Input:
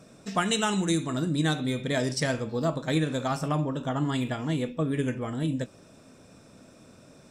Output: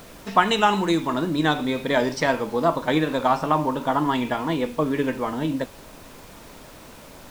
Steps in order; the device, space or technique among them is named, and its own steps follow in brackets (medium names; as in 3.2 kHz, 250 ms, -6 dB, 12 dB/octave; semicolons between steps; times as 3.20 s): horn gramophone (band-pass 240–3700 Hz; peaking EQ 950 Hz +10.5 dB 0.4 oct; wow and flutter; pink noise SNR 22 dB); trim +6.5 dB